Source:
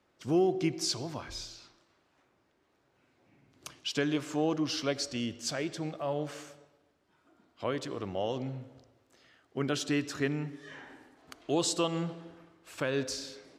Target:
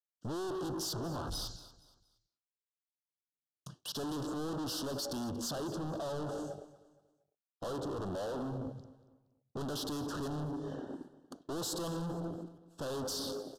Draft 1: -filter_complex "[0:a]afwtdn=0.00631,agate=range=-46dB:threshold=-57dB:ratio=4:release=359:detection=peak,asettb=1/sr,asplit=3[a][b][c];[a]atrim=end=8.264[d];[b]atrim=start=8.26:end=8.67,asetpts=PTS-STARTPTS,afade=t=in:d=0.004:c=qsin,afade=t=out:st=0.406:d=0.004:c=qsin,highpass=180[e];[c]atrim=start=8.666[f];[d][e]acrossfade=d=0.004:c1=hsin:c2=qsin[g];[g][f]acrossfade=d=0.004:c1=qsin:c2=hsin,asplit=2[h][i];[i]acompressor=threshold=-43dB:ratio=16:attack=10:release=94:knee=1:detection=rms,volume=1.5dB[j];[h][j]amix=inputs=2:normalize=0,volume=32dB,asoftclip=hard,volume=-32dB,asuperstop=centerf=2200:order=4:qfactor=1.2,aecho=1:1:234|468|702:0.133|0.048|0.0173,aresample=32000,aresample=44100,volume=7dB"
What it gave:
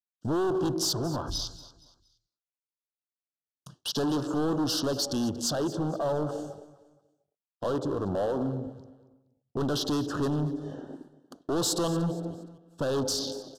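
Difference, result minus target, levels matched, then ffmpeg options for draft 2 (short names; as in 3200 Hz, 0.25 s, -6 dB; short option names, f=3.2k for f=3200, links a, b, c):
overloaded stage: distortion -5 dB
-filter_complex "[0:a]afwtdn=0.00631,agate=range=-46dB:threshold=-57dB:ratio=4:release=359:detection=peak,asettb=1/sr,asplit=3[a][b][c];[a]atrim=end=8.264[d];[b]atrim=start=8.26:end=8.67,asetpts=PTS-STARTPTS,afade=t=in:d=0.004:c=qsin,afade=t=out:st=0.406:d=0.004:c=qsin,highpass=180[e];[c]atrim=start=8.666[f];[d][e]acrossfade=d=0.004:c1=hsin:c2=qsin[g];[g][f]acrossfade=d=0.004:c1=qsin:c2=hsin,asplit=2[h][i];[i]acompressor=threshold=-43dB:ratio=16:attack=10:release=94:knee=1:detection=rms,volume=1.5dB[j];[h][j]amix=inputs=2:normalize=0,volume=43.5dB,asoftclip=hard,volume=-43.5dB,asuperstop=centerf=2200:order=4:qfactor=1.2,aecho=1:1:234|468|702:0.133|0.048|0.0173,aresample=32000,aresample=44100,volume=7dB"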